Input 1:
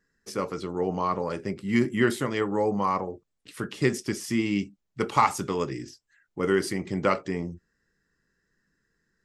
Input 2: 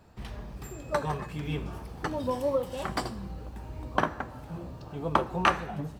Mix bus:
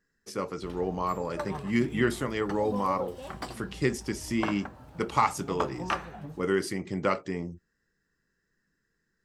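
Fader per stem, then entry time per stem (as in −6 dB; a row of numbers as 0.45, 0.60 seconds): −3.0, −6.5 decibels; 0.00, 0.45 seconds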